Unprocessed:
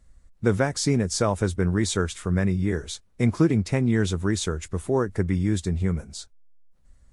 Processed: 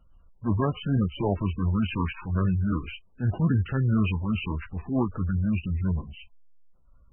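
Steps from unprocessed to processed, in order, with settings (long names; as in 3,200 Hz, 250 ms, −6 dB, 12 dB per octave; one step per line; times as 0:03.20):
formants moved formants −6 semitones
transient designer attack −9 dB, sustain +3 dB
MP3 8 kbit/s 22,050 Hz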